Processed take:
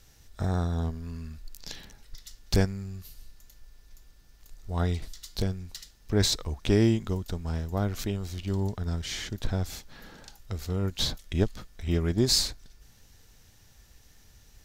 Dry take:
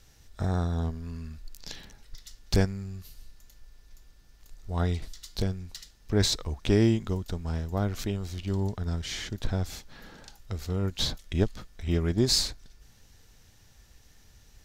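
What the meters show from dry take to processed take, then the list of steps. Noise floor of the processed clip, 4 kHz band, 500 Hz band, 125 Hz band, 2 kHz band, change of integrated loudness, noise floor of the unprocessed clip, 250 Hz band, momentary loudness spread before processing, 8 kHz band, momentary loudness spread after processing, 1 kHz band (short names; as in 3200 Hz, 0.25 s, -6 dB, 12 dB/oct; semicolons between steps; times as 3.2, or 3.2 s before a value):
-58 dBFS, +0.5 dB, 0.0 dB, 0.0 dB, 0.0 dB, 0.0 dB, -58 dBFS, 0.0 dB, 20 LU, +1.0 dB, 19 LU, 0.0 dB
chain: high shelf 11000 Hz +5.5 dB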